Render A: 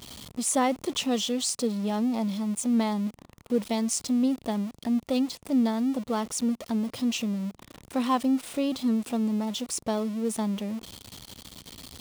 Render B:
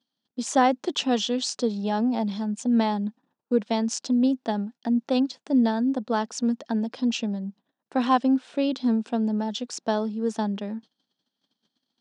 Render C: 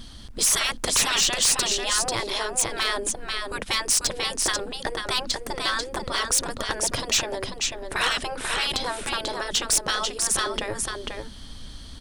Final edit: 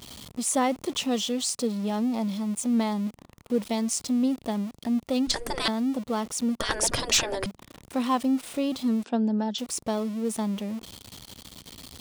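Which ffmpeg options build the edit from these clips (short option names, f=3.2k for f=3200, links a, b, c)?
-filter_complex "[2:a]asplit=2[a][b];[0:a]asplit=4[c][d][e][f];[c]atrim=end=5.272[g];[a]atrim=start=5.268:end=5.682[h];[d]atrim=start=5.678:end=6.602[i];[b]atrim=start=6.598:end=7.462[j];[e]atrim=start=7.458:end=9.042[k];[1:a]atrim=start=9.038:end=9.582[l];[f]atrim=start=9.578[m];[g][h]acrossfade=d=0.004:c1=hsin:c2=hsin[n];[n][i]acrossfade=d=0.004:c1=hsin:c2=hsin[o];[o][j]acrossfade=d=0.004:c1=hsin:c2=hsin[p];[p][k]acrossfade=d=0.004:c1=hsin:c2=hsin[q];[q][l]acrossfade=d=0.004:c1=hsin:c2=hsin[r];[r][m]acrossfade=d=0.004:c1=hsin:c2=hsin"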